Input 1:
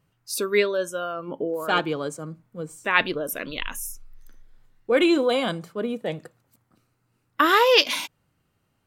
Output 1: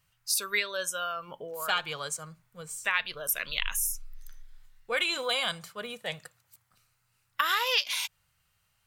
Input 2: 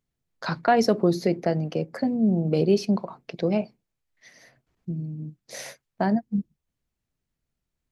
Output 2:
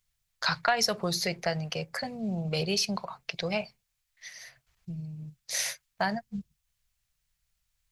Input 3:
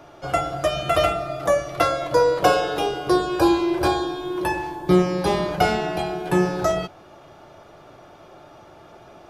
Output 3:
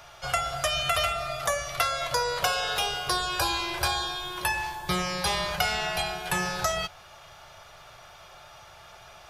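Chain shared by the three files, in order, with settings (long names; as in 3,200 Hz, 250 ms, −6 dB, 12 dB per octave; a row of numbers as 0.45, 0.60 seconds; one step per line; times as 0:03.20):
guitar amp tone stack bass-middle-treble 10-0-10
downward compressor 5 to 1, threshold −31 dBFS
normalise the peak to −9 dBFS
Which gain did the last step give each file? +6.5, +10.5, +8.5 decibels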